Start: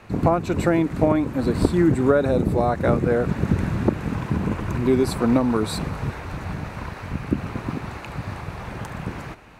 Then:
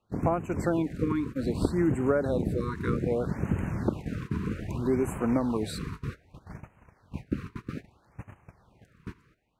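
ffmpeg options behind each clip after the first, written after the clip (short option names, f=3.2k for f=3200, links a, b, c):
-af "agate=range=-20dB:threshold=-27dB:ratio=16:detection=peak,afftfilt=real='re*(1-between(b*sr/1024,640*pow(4500/640,0.5+0.5*sin(2*PI*0.63*pts/sr))/1.41,640*pow(4500/640,0.5+0.5*sin(2*PI*0.63*pts/sr))*1.41))':imag='im*(1-between(b*sr/1024,640*pow(4500/640,0.5+0.5*sin(2*PI*0.63*pts/sr))/1.41,640*pow(4500/640,0.5+0.5*sin(2*PI*0.63*pts/sr))*1.41))':win_size=1024:overlap=0.75,volume=-7.5dB"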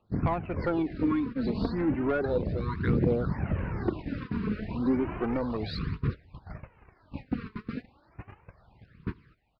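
-af "aresample=11025,asoftclip=type=tanh:threshold=-20dB,aresample=44100,aphaser=in_gain=1:out_gain=1:delay=4.8:decay=0.54:speed=0.33:type=triangular"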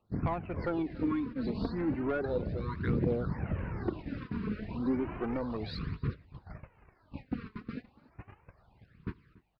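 -filter_complex "[0:a]asplit=2[a][b];[b]adelay=285.7,volume=-22dB,highshelf=f=4k:g=-6.43[c];[a][c]amix=inputs=2:normalize=0,volume=-4.5dB"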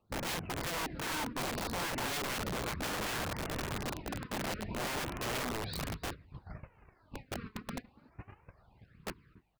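-af "aeval=exprs='(mod(37.6*val(0)+1,2)-1)/37.6':c=same"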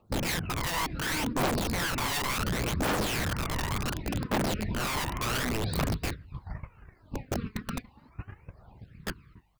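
-af "aphaser=in_gain=1:out_gain=1:delay=1.1:decay=0.53:speed=0.69:type=triangular,volume=4.5dB"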